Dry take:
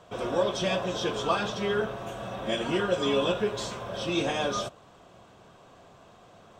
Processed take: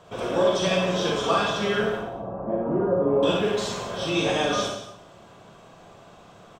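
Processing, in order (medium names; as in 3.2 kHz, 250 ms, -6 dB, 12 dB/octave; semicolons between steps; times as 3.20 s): 1.96–3.23 s: low-pass 1 kHz 24 dB/octave; delay 175 ms -12.5 dB; Schroeder reverb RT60 0.54 s, DRR -0.5 dB; trim +1.5 dB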